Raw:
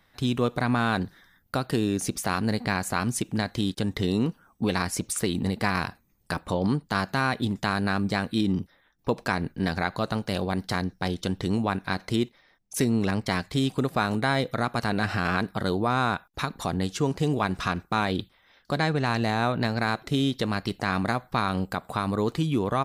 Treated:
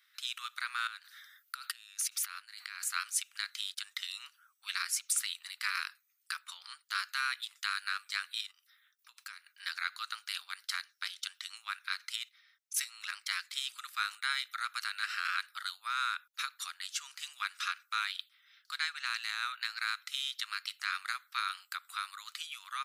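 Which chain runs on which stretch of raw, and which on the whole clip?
0.87–2.84 s: compressor with a negative ratio -34 dBFS + dynamic bell 7.1 kHz, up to -4 dB, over -44 dBFS, Q 0.89 + brick-wall FIR high-pass 570 Hz
8.51–9.46 s: treble shelf 7.6 kHz +7 dB + compression 8:1, threshold -34 dBFS + overload inside the chain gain 25.5 dB
whole clip: Chebyshev high-pass 1.3 kHz, order 5; peaking EQ 1.7 kHz -5 dB 1 oct

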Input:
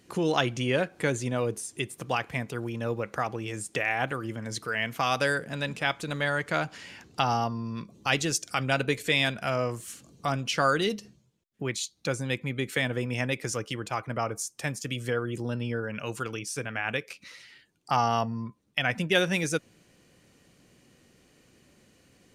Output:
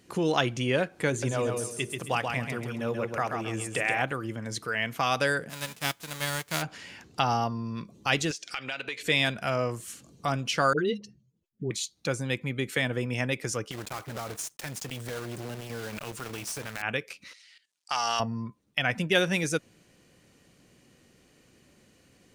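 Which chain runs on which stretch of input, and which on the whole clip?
1.09–4.02 s: hum notches 50/100/150/200/250/300/350/400/450 Hz + feedback delay 134 ms, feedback 30%, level -4.5 dB
5.49–6.61 s: formants flattened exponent 0.3 + upward expansion, over -44 dBFS
8.31–9.03 s: frequency weighting D + compression 4:1, threshold -33 dBFS + overdrive pedal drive 10 dB, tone 2 kHz, clips at -16 dBFS
10.73–11.71 s: spectral contrast enhancement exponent 1.6 + phase dispersion highs, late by 56 ms, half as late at 690 Hz
13.71–16.83 s: block-companded coder 3-bit + compression 4:1, threshold -30 dBFS + transformer saturation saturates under 710 Hz
17.33–18.20 s: companding laws mixed up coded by A + frequency weighting ITU-R 468 + level held to a coarse grid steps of 14 dB
whole clip: none

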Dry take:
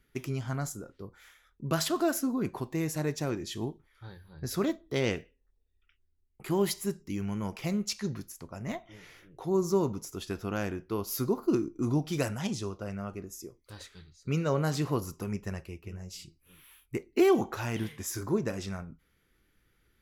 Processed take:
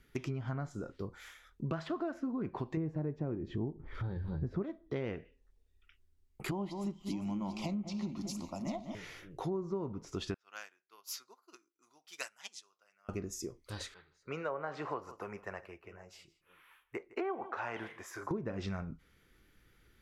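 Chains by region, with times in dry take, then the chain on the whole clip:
2.77–4.63 s: tilt shelf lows +9 dB, about 1.1 kHz + upward compressor, threshold -30 dBFS
6.51–8.95 s: static phaser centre 440 Hz, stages 6 + echo whose repeats swap between lows and highs 199 ms, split 2 kHz, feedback 67%, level -9.5 dB
10.34–13.09 s: high-pass 1.3 kHz + upward expansion 2.5:1, over -49 dBFS
13.94–18.31 s: three-band isolator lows -22 dB, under 490 Hz, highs -19 dB, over 2.1 kHz + delay 160 ms -19.5 dB
whole clip: low-pass that closes with the level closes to 1.9 kHz, closed at -28.5 dBFS; peaking EQ 11 kHz -3.5 dB 0.4 oct; compression 6:1, threshold -38 dBFS; trim +4 dB

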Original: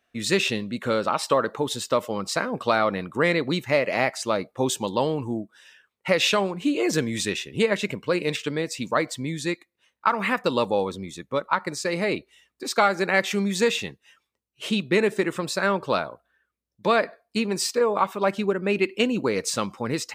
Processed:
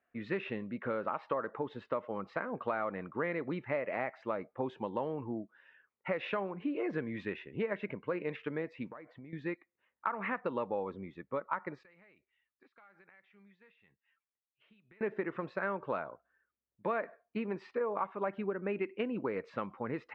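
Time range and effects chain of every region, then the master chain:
8.90–9.33 s: distance through air 91 m + compression 20:1, threshold -36 dBFS
11.83–15.01 s: amplifier tone stack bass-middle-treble 5-5-5 + compression 12:1, threshold -48 dBFS
whole clip: low-pass 2.1 kHz 24 dB/octave; bass shelf 180 Hz -6.5 dB; compression 2.5:1, threshold -26 dBFS; trim -6.5 dB

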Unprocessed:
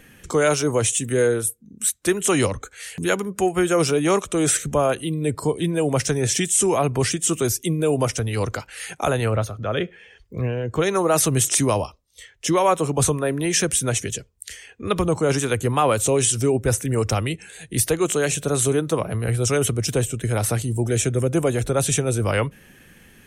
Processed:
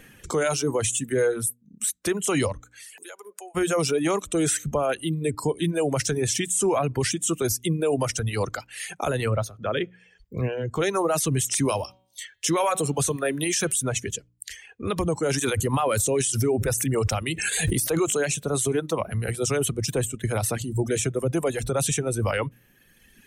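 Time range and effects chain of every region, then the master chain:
2.62–3.55 s: high-pass 440 Hz 24 dB/octave + dynamic bell 9.8 kHz, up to +5 dB, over -46 dBFS, Q 1.1 + compression 8:1, threshold -37 dBFS
11.65–13.82 s: high-pass 71 Hz + treble shelf 2.2 kHz +8.5 dB + de-hum 188.4 Hz, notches 23
15.23–18.22 s: treble shelf 5.9 kHz +4.5 dB + swell ahead of each attack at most 29 dB/s
whole clip: de-hum 60.05 Hz, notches 5; reverb removal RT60 1.4 s; peak limiter -15 dBFS

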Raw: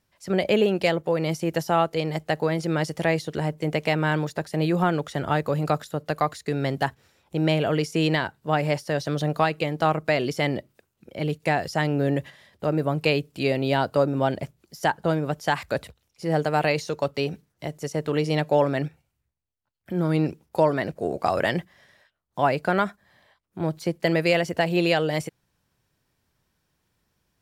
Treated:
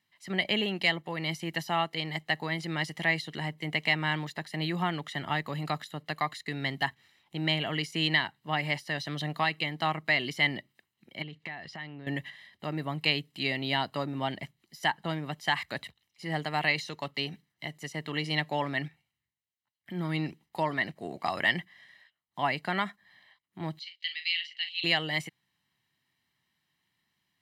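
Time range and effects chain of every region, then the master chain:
11.22–12.07 s: low-pass 3.7 kHz + compression 8:1, threshold -30 dBFS
23.79–24.84 s: Butterworth band-pass 3.5 kHz, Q 1.7 + doubling 40 ms -9 dB + tape noise reduction on one side only encoder only
whole clip: high-pass 150 Hz 12 dB/octave; high-order bell 2.6 kHz +9 dB; comb 1 ms, depth 62%; trim -9 dB

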